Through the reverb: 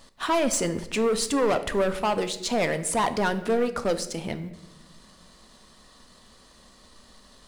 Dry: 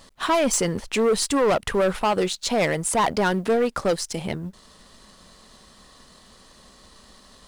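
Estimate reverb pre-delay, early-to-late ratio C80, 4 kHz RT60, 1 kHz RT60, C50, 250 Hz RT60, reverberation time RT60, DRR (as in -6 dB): 3 ms, 15.5 dB, 0.75 s, 0.80 s, 13.5 dB, 1.7 s, 1.0 s, 9.5 dB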